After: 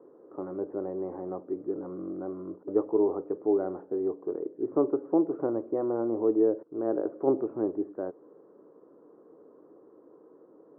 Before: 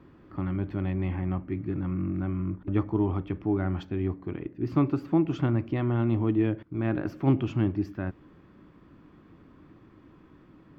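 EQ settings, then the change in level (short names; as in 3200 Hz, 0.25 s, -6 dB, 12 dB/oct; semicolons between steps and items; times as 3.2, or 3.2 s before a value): resonant high-pass 460 Hz, resonance Q 5.2; Bessel low-pass 760 Hz, order 8; 0.0 dB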